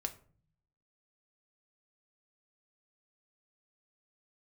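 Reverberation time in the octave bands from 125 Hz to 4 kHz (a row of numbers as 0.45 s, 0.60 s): 1.0 s, 0.90 s, 0.50 s, 0.40 s, 0.35 s, 0.25 s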